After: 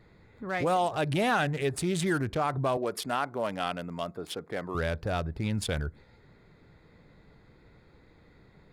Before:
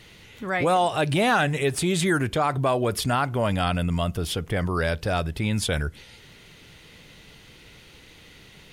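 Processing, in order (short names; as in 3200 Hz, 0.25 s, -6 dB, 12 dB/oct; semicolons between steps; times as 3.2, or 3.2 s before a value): Wiener smoothing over 15 samples; 2.77–4.75 HPF 270 Hz 12 dB/oct; gain -5 dB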